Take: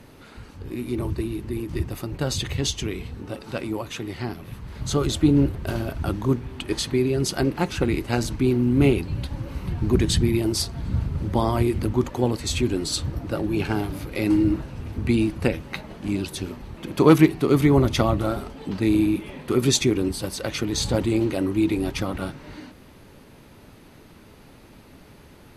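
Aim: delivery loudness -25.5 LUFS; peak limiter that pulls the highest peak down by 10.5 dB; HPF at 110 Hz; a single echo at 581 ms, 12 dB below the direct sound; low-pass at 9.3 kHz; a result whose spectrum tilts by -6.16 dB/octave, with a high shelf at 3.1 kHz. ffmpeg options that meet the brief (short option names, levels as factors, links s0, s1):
-af "highpass=110,lowpass=9300,highshelf=f=3100:g=-6,alimiter=limit=0.224:level=0:latency=1,aecho=1:1:581:0.251,volume=1.06"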